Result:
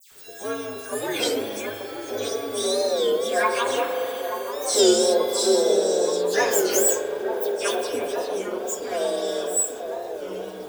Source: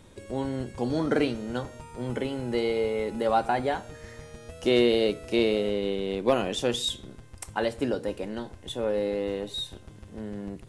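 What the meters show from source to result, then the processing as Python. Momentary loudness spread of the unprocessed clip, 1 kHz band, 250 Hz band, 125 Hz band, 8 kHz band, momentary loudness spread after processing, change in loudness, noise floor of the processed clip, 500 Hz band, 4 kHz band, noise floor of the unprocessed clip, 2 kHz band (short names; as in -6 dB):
15 LU, +3.5 dB, -1.0 dB, under -10 dB, +19.5 dB, 13 LU, +5.0 dB, -37 dBFS, +5.5 dB, +5.0 dB, -49 dBFS, +5.5 dB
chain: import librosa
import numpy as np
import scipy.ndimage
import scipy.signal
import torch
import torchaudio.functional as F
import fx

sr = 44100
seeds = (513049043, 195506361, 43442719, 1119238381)

p1 = fx.partial_stretch(x, sr, pct=127)
p2 = fx.tilt_eq(p1, sr, slope=4.5)
p3 = fx.rev_spring(p2, sr, rt60_s=3.3, pass_ms=(39,), chirp_ms=65, drr_db=5.0)
p4 = np.clip(10.0 ** (15.5 / 20.0) * p3, -1.0, 1.0) / 10.0 ** (15.5 / 20.0)
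p5 = fx.small_body(p4, sr, hz=(420.0, 1600.0, 3400.0), ring_ms=20, db=12)
p6 = p5 + fx.echo_wet_bandpass(p5, sr, ms=879, feedback_pct=69, hz=550.0, wet_db=-6.5, dry=0)
p7 = fx.dmg_crackle(p6, sr, seeds[0], per_s=330.0, level_db=-39.0)
p8 = fx.dispersion(p7, sr, late='lows', ms=116.0, hz=2600.0)
p9 = fx.record_warp(p8, sr, rpm=33.33, depth_cents=160.0)
y = F.gain(torch.from_numpy(p9), 1.0).numpy()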